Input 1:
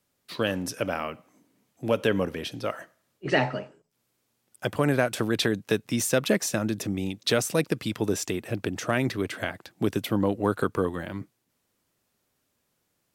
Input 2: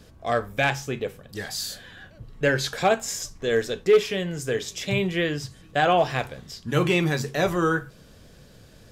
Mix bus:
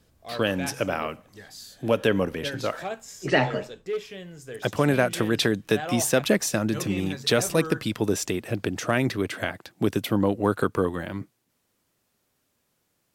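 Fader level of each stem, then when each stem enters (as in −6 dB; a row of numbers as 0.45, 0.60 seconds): +2.0, −12.5 decibels; 0.00, 0.00 seconds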